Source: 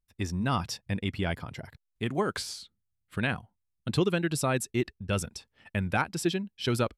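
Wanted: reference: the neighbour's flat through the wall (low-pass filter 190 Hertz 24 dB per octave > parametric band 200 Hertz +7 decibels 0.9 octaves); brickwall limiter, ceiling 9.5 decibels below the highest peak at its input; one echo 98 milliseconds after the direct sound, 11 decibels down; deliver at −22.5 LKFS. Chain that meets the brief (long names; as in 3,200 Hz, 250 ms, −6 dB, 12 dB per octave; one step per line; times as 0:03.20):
brickwall limiter −24 dBFS
low-pass filter 190 Hz 24 dB per octave
parametric band 200 Hz +7 dB 0.9 octaves
single-tap delay 98 ms −11 dB
level +14 dB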